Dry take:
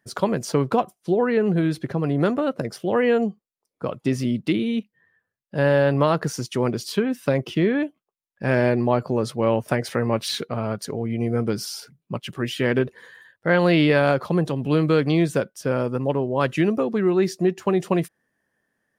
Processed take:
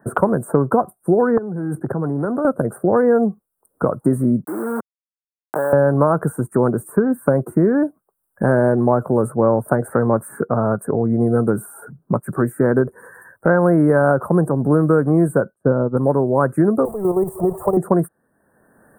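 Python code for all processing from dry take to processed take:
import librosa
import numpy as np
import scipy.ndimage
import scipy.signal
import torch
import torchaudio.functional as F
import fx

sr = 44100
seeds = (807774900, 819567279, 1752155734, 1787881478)

y = fx.chain(x, sr, fx.level_steps(step_db=17),
    fx.highpass(hz=100.0, slope=24),
    fx.transformer_sat(knee_hz=1000.0), at=(1.37, 2.45))
y = fx.chain(y, sr, fx.level_steps(step_db=14),
    fx.quant_dither(seeds[0], bits=6, dither='none'),
    fx.highpass(hz=450.0, slope=12), at=(4.44, 5.73))
y = fx.chain(y, sr, fx.lowpass(hz=1100.0, slope=6),
    fx.low_shelf(hz=490.0, db=5.5),
    fx.upward_expand(threshold_db=-32.0, expansion=2.5), at=(15.54, 15.97))
y = fx.chain(y, sr, fx.zero_step(step_db=-27.0),
    fx.level_steps(step_db=9),
    fx.fixed_phaser(hz=630.0, stages=4), at=(16.85, 17.77))
y = scipy.signal.sosfilt(scipy.signal.cheby1(4, 1.0, [1500.0, 8600.0], 'bandstop', fs=sr, output='sos'), y)
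y = fx.band_squash(y, sr, depth_pct=70)
y = y * 10.0 ** (5.5 / 20.0)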